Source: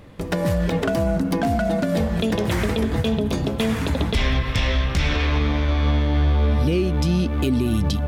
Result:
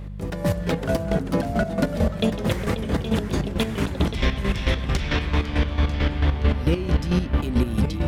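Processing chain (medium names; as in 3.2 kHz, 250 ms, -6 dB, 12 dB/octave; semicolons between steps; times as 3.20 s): ever faster or slower copies 338 ms, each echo -2 st, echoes 3, each echo -6 dB; square tremolo 4.5 Hz, depth 65%, duty 35%; mains buzz 50 Hz, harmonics 4, -34 dBFS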